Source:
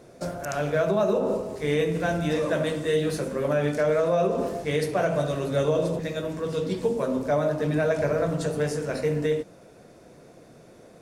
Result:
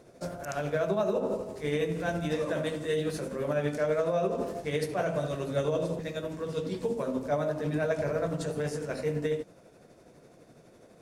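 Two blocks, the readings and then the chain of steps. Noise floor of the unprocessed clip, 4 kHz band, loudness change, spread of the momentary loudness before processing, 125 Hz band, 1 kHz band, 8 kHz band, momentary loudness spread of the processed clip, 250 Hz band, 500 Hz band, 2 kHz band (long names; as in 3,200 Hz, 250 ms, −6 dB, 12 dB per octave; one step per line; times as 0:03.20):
−51 dBFS, −5.0 dB, −5.5 dB, 6 LU, −5.5 dB, −5.0 dB, −5.5 dB, 6 LU, −5.5 dB, −5.5 dB, −5.5 dB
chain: amplitude tremolo 12 Hz, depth 41%
level −3.5 dB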